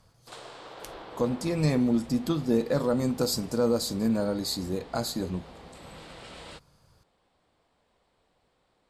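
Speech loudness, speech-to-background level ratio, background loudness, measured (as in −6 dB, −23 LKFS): −28.0 LKFS, 18.5 dB, −46.5 LKFS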